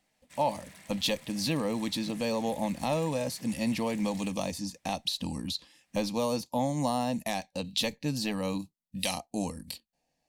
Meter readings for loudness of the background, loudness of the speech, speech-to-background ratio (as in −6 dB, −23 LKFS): −50.5 LKFS, −32.0 LKFS, 18.5 dB